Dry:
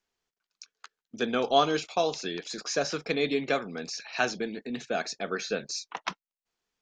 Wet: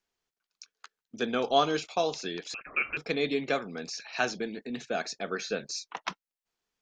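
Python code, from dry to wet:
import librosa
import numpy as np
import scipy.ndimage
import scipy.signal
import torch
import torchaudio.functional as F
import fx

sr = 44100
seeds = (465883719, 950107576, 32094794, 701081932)

y = fx.freq_invert(x, sr, carrier_hz=2900, at=(2.54, 2.97))
y = F.gain(torch.from_numpy(y), -1.5).numpy()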